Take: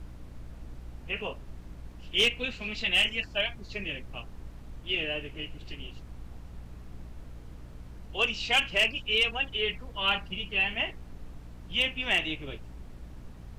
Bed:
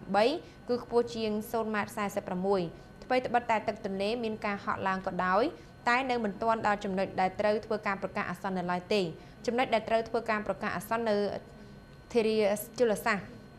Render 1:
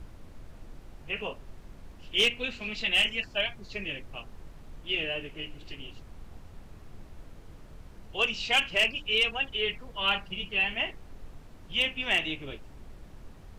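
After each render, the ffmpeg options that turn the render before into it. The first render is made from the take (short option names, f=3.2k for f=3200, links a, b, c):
-af "bandreject=f=60:t=h:w=4,bandreject=f=120:t=h:w=4,bandreject=f=180:t=h:w=4,bandreject=f=240:t=h:w=4,bandreject=f=300:t=h:w=4"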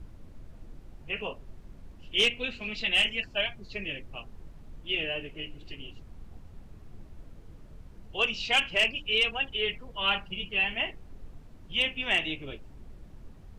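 -af "afftdn=nr=6:nf=-50"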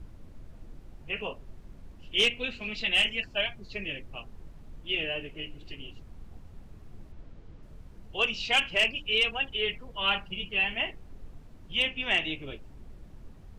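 -filter_complex "[0:a]asettb=1/sr,asplit=3[a][b][c];[a]atrim=end=7.124[d];[b]atrim=start=7.12:end=7.63,asetpts=PTS-STARTPTS,afade=t=in:d=0.004:c=qsin,afade=t=out:st=0.506:d=0.004:c=qsin,lowpass=5.3k[e];[c]atrim=start=7.626[f];[d][e]acrossfade=d=0.004:c1=hsin:c2=qsin[g];[g][f]acrossfade=d=0.004:c1=qsin:c2=hsin,asettb=1/sr,asplit=3[h][i][j];[h]atrim=end=11.884[k];[i]atrim=start=11.88:end=12.32,asetpts=PTS-STARTPTS,afade=t=in:d=0.004:c=qsin,afade=t=out:st=0.436:d=0.004:c=qsin,lowpass=f=7.6k:w=0.5412,lowpass=f=7.6k:w=1.3066[l];[j]atrim=start=12.316[m];[k][l]acrossfade=d=0.004:c1=hsin:c2=qsin[n];[n][m]acrossfade=d=0.004:c1=qsin:c2=hsin"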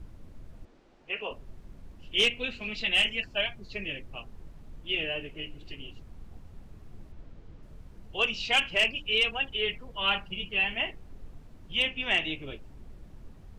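-filter_complex "[0:a]asettb=1/sr,asplit=3[a][b][c];[a]atrim=end=0.654[d];[b]atrim=start=0.65:end=1.31,asetpts=PTS-STARTPTS,afade=t=in:d=0.004:c=qsin,afade=t=out:st=0.656:d=0.004:c=qsin,acrossover=split=260 7000:gain=0.112 1 0.0891[e][f][g];[e][f][g]amix=inputs=3:normalize=0[h];[c]atrim=start=1.306[i];[d][h]acrossfade=d=0.004:c1=hsin:c2=qsin[j];[j][i]acrossfade=d=0.004:c1=qsin:c2=hsin"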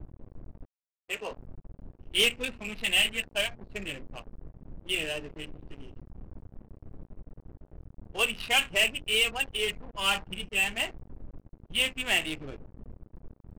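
-af "acrusher=bits=6:mix=0:aa=0.5,adynamicsmooth=sensitivity=7:basefreq=570"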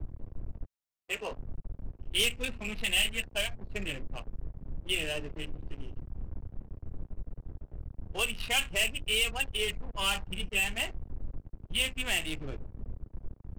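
-filter_complex "[0:a]acrossover=split=110|3900[a][b][c];[a]acontrast=84[d];[b]alimiter=limit=-22dB:level=0:latency=1:release=329[e];[d][e][c]amix=inputs=3:normalize=0"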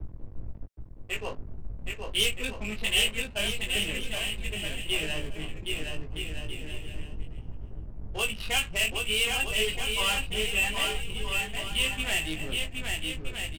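-filter_complex "[0:a]asplit=2[a][b];[b]adelay=19,volume=-4.5dB[c];[a][c]amix=inputs=2:normalize=0,aecho=1:1:770|1270|1596|1807|1945:0.631|0.398|0.251|0.158|0.1"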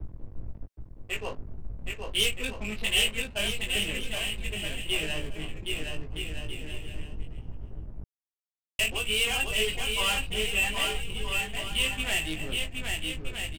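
-filter_complex "[0:a]asplit=3[a][b][c];[a]atrim=end=8.04,asetpts=PTS-STARTPTS,afade=t=out:st=8.036:d=0.004:c=hsin[d];[b]atrim=start=8.04:end=8.79,asetpts=PTS-STARTPTS,volume=0[e];[c]atrim=start=8.79,asetpts=PTS-STARTPTS,afade=t=in:d=0.004:c=hsin[f];[d][e][f]concat=n=3:v=0:a=1"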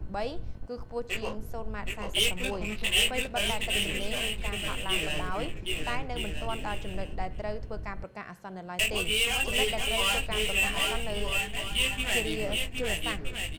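-filter_complex "[1:a]volume=-8dB[a];[0:a][a]amix=inputs=2:normalize=0"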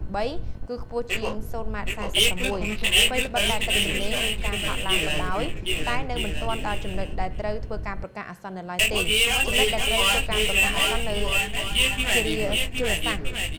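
-af "volume=6dB"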